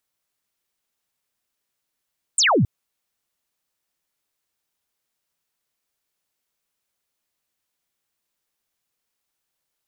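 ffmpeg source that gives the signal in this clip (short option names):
-f lavfi -i "aevalsrc='0.2*clip(t/0.002,0,1)*clip((0.27-t)/0.002,0,1)*sin(2*PI*9000*0.27/log(90/9000)*(exp(log(90/9000)*t/0.27)-1))':d=0.27:s=44100"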